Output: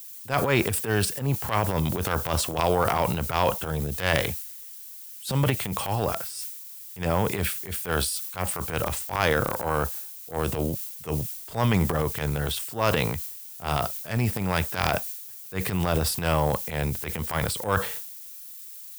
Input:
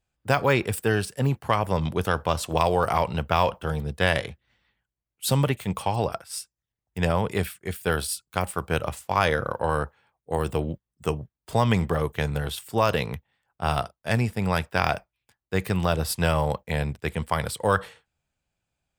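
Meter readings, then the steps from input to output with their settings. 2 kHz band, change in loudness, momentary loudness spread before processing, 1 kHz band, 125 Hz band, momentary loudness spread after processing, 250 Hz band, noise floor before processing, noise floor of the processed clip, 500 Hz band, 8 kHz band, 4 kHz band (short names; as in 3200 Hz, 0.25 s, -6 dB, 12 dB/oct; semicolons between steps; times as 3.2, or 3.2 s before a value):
-1.0 dB, -0.5 dB, 8 LU, -2.0 dB, -1.0 dB, 11 LU, -0.5 dB, under -85 dBFS, -42 dBFS, -1.5 dB, +4.0 dB, +1.0 dB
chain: added noise violet -42 dBFS; transient shaper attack -12 dB, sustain +8 dB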